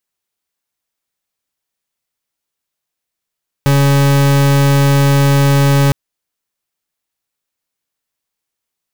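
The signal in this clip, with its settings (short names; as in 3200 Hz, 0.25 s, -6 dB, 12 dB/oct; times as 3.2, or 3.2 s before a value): pulse 140 Hz, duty 40% -10 dBFS 2.26 s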